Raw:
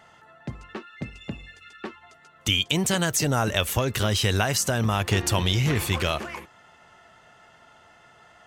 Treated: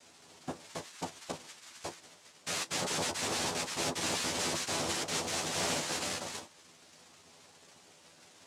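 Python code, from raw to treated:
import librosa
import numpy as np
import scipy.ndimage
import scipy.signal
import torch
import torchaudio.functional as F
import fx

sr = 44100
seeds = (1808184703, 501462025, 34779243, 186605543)

y = (np.mod(10.0 ** (22.0 / 20.0) * x + 1.0, 2.0) - 1.0) / 10.0 ** (22.0 / 20.0)
y = fx.noise_vocoder(y, sr, seeds[0], bands=2)
y = fx.room_early_taps(y, sr, ms=(12, 32), db=(-3.5, -16.0))
y = y * librosa.db_to_amplitude(-7.0)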